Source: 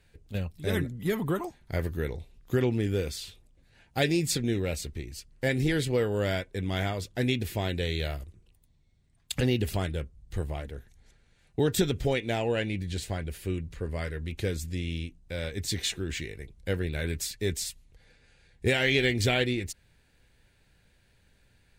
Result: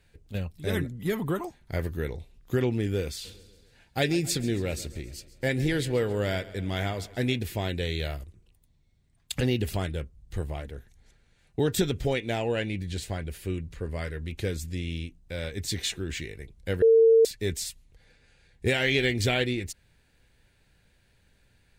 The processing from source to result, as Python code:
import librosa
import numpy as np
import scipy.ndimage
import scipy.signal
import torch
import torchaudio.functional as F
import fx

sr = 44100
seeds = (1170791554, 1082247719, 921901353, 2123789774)

y = fx.echo_feedback(x, sr, ms=136, feedback_pct=57, wet_db=-18, at=(3.24, 7.38), fade=0.02)
y = fx.edit(y, sr, fx.bleep(start_s=16.82, length_s=0.43, hz=452.0, db=-14.0), tone=tone)